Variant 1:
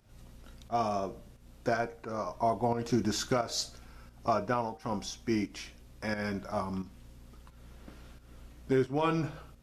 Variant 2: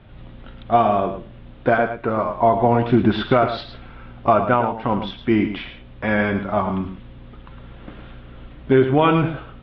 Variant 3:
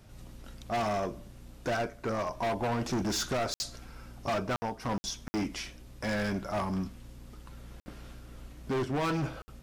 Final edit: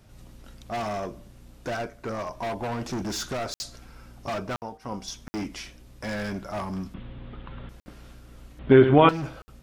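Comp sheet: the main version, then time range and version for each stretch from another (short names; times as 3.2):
3
4.62–5.08 from 1
6.94–7.69 from 2
8.59–9.09 from 2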